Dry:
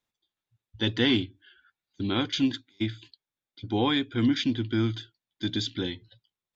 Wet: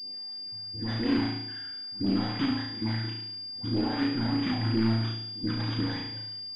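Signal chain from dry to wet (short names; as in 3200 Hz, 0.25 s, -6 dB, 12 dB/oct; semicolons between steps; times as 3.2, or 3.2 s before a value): per-bin compression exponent 0.6; HPF 120 Hz 12 dB/oct; notch 390 Hz, Q 12; in parallel at +0.5 dB: limiter -17.5 dBFS, peak gain reduction 8 dB; on the sum: pre-echo 84 ms -22.5 dB; overloaded stage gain 19 dB; dispersion highs, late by 70 ms, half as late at 700 Hz; phaser stages 8, 3 Hz, lowest notch 330–1600 Hz; on a send: flutter echo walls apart 6.1 m, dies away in 0.77 s; on the sum: pulse-width modulation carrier 4800 Hz; gain -6 dB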